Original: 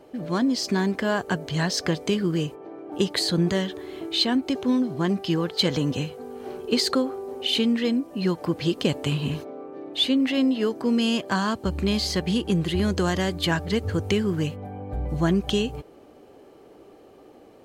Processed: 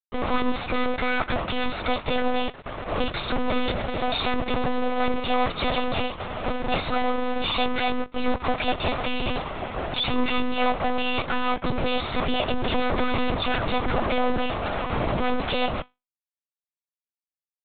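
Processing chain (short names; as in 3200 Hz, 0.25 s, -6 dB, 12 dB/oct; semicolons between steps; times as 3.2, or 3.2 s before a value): minimum comb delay 0.82 ms; low shelf 340 Hz -10.5 dB; notch 840 Hz, Q 12; comb 1.4 ms, depth 40%; fuzz box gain 48 dB, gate -43 dBFS; resonator 91 Hz, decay 0.22 s, harmonics all, mix 50%; small resonant body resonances 380/660/1100 Hz, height 11 dB, ringing for 60 ms; monotone LPC vocoder at 8 kHz 250 Hz; gain -6 dB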